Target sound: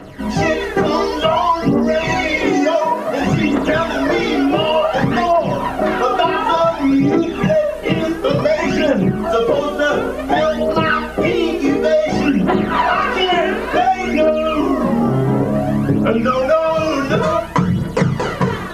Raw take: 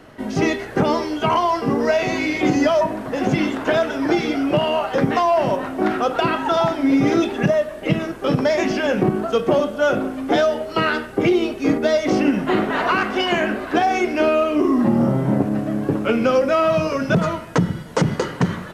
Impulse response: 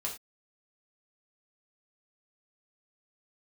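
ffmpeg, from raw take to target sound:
-filter_complex "[0:a]asettb=1/sr,asplit=3[link_01][link_02][link_03];[link_01]atrim=end=2.454[link_04];[link_02]atrim=start=2.45:end=3.19,asetpts=PTS-STARTPTS,afade=type=in:duration=0.004:curve=qsin,afade=type=out:start_time=0.736:duration=0.004:curve=qsin,highpass=180[link_05];[link_03]atrim=start=3.186[link_06];[link_04][link_05]acrossfade=duration=0.004:curve1=hsin:curve2=qsin[link_07];[link_07][link_06]acrossfade=duration=0.004:curve1=qsin:curve2=hsin,acrossover=split=2700[link_08][link_09];[link_09]alimiter=level_in=4dB:limit=-24dB:level=0:latency=1:release=128,volume=-4dB[link_10];[link_08][link_10]amix=inputs=2:normalize=0[link_11];[1:a]atrim=start_sample=2205[link_12];[link_11][link_12]afir=irnorm=-1:irlink=0,aphaser=in_gain=1:out_gain=1:delay=2.9:decay=0.57:speed=0.56:type=triangular,acompressor=threshold=-16dB:ratio=6,volume=4.5dB"

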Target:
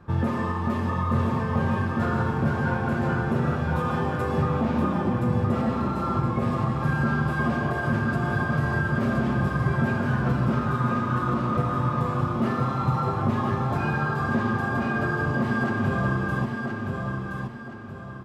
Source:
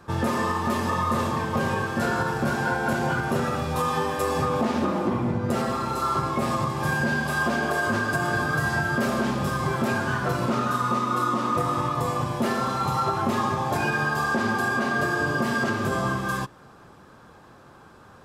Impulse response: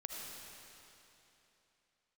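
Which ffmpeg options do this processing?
-filter_complex "[0:a]bass=frequency=250:gain=9,treble=frequency=4000:gain=-13,asplit=2[link_01][link_02];[link_02]aecho=0:1:1021|2042|3063|4084|5105:0.596|0.214|0.0772|0.0278|0.01[link_03];[link_01][link_03]amix=inputs=2:normalize=0,volume=-4.5dB"

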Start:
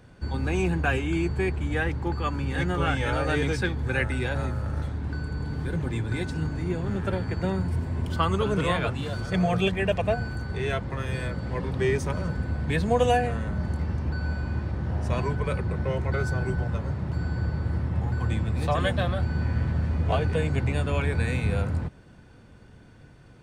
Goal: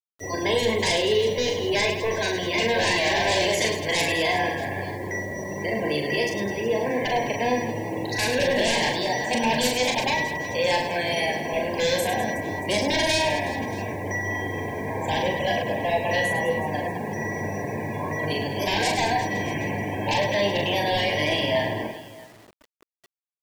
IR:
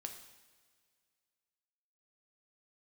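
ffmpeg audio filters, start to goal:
-filter_complex "[0:a]asetrate=57191,aresample=44100,atempo=0.771105,highpass=frequency=120:poles=1,acrossover=split=350[link_01][link_02];[link_02]aeval=exprs='0.251*sin(PI/2*5.62*val(0)/0.251)':channel_layout=same[link_03];[link_01][link_03]amix=inputs=2:normalize=0,asuperstop=centerf=1300:order=12:qfactor=2.6,afftfilt=real='re*gte(hypot(re,im),0.0631)':imag='im*gte(hypot(re,im),0.0631)':win_size=1024:overlap=0.75,bandreject=frequency=171.1:width_type=h:width=4,bandreject=frequency=342.2:width_type=h:width=4,asplit=2[link_04][link_05];[link_05]aecho=0:1:40|104|206.4|370.2|632.4:0.631|0.398|0.251|0.158|0.1[link_06];[link_04][link_06]amix=inputs=2:normalize=0,acrusher=bits=6:mix=0:aa=0.000001,volume=-8.5dB"

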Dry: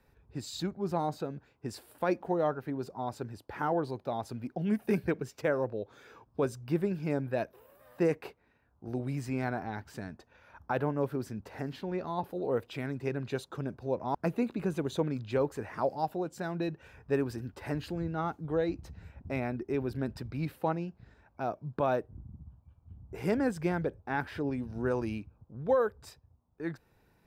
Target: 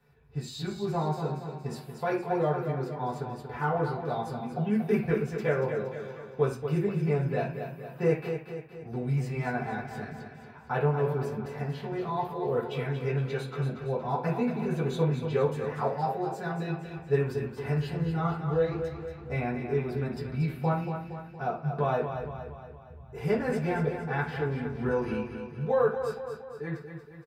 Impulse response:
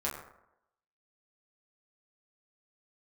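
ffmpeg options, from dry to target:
-filter_complex "[0:a]aecho=1:1:233|466|699|932|1165|1398:0.398|0.207|0.108|0.056|0.0291|0.0151[link_01];[1:a]atrim=start_sample=2205,asetrate=88200,aresample=44100[link_02];[link_01][link_02]afir=irnorm=-1:irlink=0,volume=2.5dB"

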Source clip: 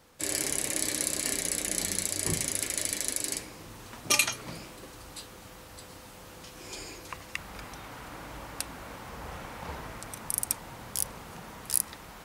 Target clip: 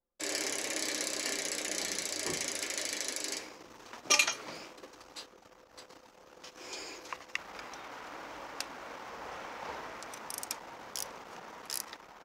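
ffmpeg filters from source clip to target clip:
ffmpeg -i in.wav -filter_complex "[0:a]aexciter=amount=2.1:drive=4.3:freq=5400,anlmdn=0.0631,acrossover=split=280 5800:gain=0.112 1 0.0891[link_01][link_02][link_03];[link_01][link_02][link_03]amix=inputs=3:normalize=0" out.wav

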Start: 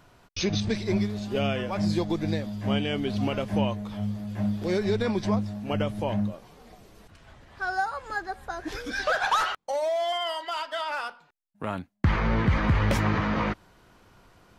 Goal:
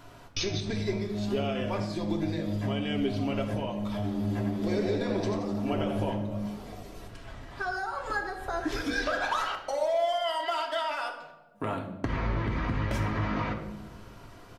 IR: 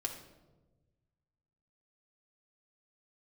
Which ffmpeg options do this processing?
-filter_complex "[0:a]acompressor=threshold=-34dB:ratio=6,asplit=3[link_01][link_02][link_03];[link_01]afade=type=out:start_time=4.03:duration=0.02[link_04];[link_02]asplit=7[link_05][link_06][link_07][link_08][link_09][link_10][link_11];[link_06]adelay=87,afreqshift=91,volume=-7dB[link_12];[link_07]adelay=174,afreqshift=182,volume=-13dB[link_13];[link_08]adelay=261,afreqshift=273,volume=-19dB[link_14];[link_09]adelay=348,afreqshift=364,volume=-25.1dB[link_15];[link_10]adelay=435,afreqshift=455,volume=-31.1dB[link_16];[link_11]adelay=522,afreqshift=546,volume=-37.1dB[link_17];[link_05][link_12][link_13][link_14][link_15][link_16][link_17]amix=inputs=7:normalize=0,afade=type=in:start_time=4.03:duration=0.02,afade=type=out:start_time=6.1:duration=0.02[link_18];[link_03]afade=type=in:start_time=6.1:duration=0.02[link_19];[link_04][link_18][link_19]amix=inputs=3:normalize=0[link_20];[1:a]atrim=start_sample=2205[link_21];[link_20][link_21]afir=irnorm=-1:irlink=0,volume=5.5dB"

